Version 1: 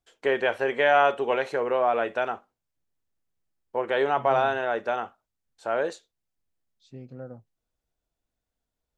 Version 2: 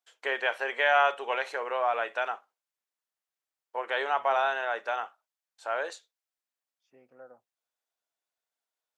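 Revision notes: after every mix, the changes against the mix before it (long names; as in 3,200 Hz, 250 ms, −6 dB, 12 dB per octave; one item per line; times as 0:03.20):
second voice: add moving average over 11 samples
master: add high-pass filter 800 Hz 12 dB per octave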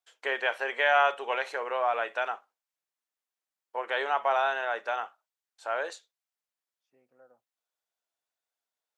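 second voice −8.5 dB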